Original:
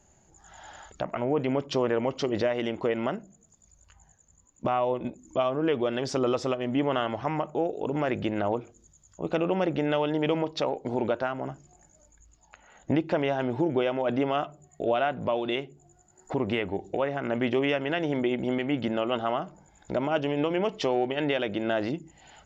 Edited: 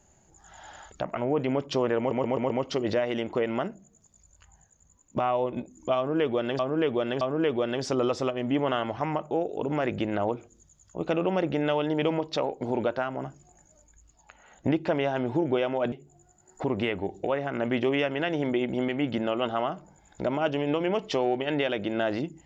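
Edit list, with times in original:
1.98 s: stutter 0.13 s, 5 plays
5.45–6.07 s: loop, 3 plays
14.16–15.62 s: delete

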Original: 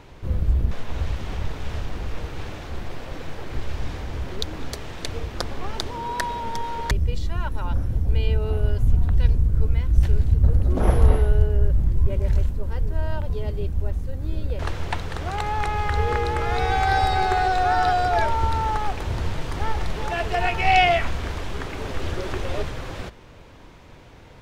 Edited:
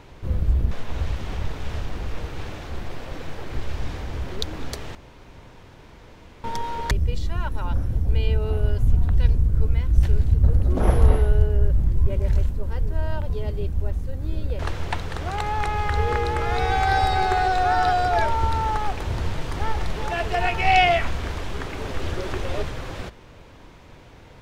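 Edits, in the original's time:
4.95–6.44 s: room tone

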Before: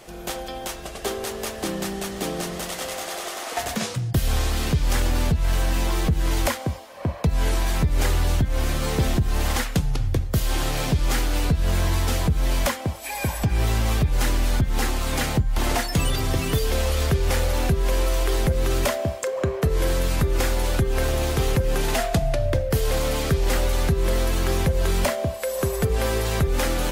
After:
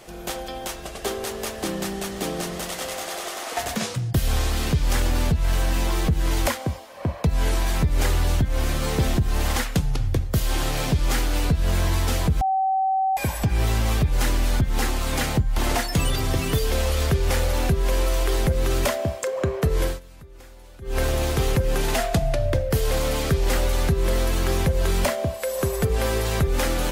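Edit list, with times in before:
12.41–13.17 s: bleep 766 Hz -18.5 dBFS
19.83–20.98 s: dip -23.5 dB, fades 0.17 s

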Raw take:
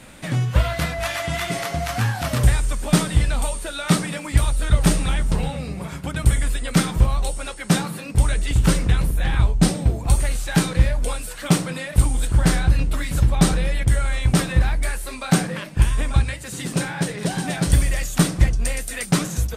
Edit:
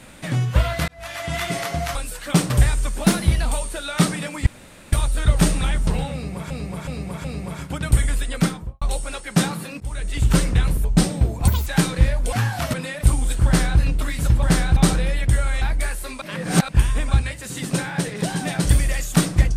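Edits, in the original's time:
0.88–1.38 s: fade in
1.95–2.36 s: swap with 11.11–11.66 s
2.90–3.36 s: speed 111%
4.37 s: insert room tone 0.46 s
5.58–5.95 s: loop, 4 plays
6.64–7.15 s: studio fade out
8.14–8.60 s: fade in, from -21 dB
9.18–9.49 s: delete
10.12–10.45 s: speed 173%
12.38–12.72 s: copy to 13.35 s
14.20–14.64 s: delete
15.24–15.71 s: reverse

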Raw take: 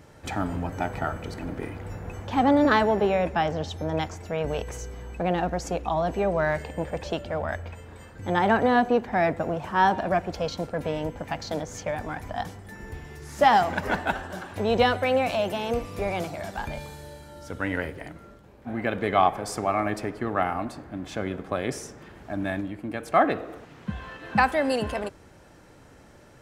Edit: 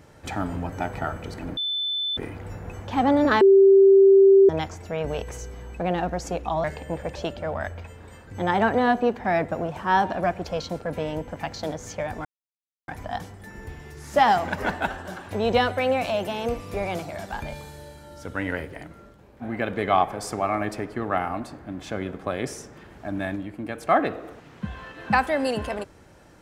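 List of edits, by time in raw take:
1.57 s: add tone 3.52 kHz -24 dBFS 0.60 s
2.81–3.89 s: bleep 390 Hz -10 dBFS
6.04–6.52 s: delete
12.13 s: insert silence 0.63 s

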